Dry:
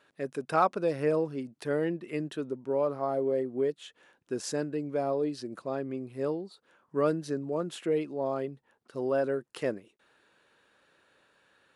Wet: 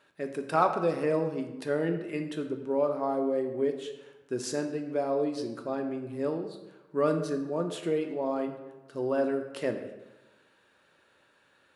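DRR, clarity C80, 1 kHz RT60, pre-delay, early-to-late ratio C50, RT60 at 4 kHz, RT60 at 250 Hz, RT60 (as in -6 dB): 5.0 dB, 10.0 dB, 1.1 s, 3 ms, 8.0 dB, 0.75 s, 1.1 s, 1.1 s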